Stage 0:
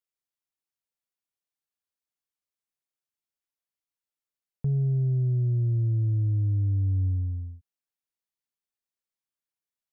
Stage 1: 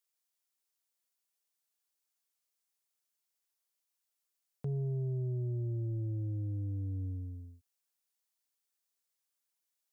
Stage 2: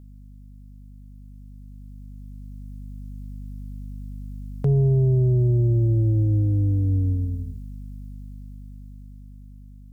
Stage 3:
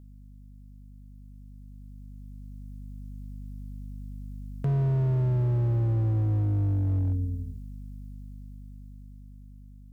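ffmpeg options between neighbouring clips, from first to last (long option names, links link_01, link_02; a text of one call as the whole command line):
ffmpeg -i in.wav -af "highpass=87,bass=frequency=250:gain=-12,treble=frequency=4000:gain=7,volume=1.5dB" out.wav
ffmpeg -i in.wav -af "aeval=exprs='val(0)+0.00355*(sin(2*PI*50*n/s)+sin(2*PI*2*50*n/s)/2+sin(2*PI*3*50*n/s)/3+sin(2*PI*4*50*n/s)/4+sin(2*PI*5*50*n/s)/5)':channel_layout=same,dynaudnorm=framelen=540:gausssize=9:maxgain=10dB,volume=6dB" out.wav
ffmpeg -i in.wav -af "volume=17dB,asoftclip=hard,volume=-17dB,volume=-4dB" out.wav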